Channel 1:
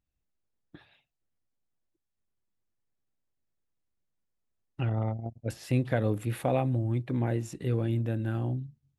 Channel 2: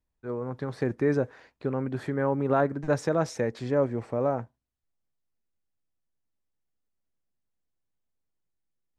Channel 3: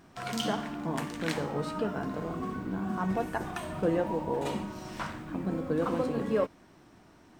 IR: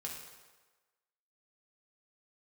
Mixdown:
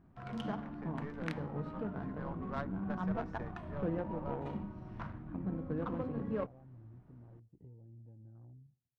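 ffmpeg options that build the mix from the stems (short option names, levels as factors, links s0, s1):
-filter_complex "[0:a]acompressor=threshold=0.0158:ratio=10,afwtdn=0.00447,equalizer=f=160:w=0.55:g=-5.5,volume=0.473,asplit=2[s0][s1];[s1]volume=0.112[s2];[1:a]highpass=740,aeval=exprs='0.158*(cos(1*acos(clip(val(0)/0.158,-1,1)))-cos(1*PI/2))+0.0282*(cos(4*acos(clip(val(0)/0.158,-1,1)))-cos(4*PI/2))+0.0251*(cos(6*acos(clip(val(0)/0.158,-1,1)))-cos(6*PI/2))':c=same,volume=0.562,asplit=2[s3][s4];[s4]volume=0.398[s5];[2:a]volume=1.12[s6];[3:a]atrim=start_sample=2205[s7];[s2][s5]amix=inputs=2:normalize=0[s8];[s8][s7]afir=irnorm=-1:irlink=0[s9];[s0][s3][s6][s9]amix=inputs=4:normalize=0,equalizer=f=460:t=o:w=2.5:g=-10.5,adynamicsmooth=sensitivity=1:basefreq=800"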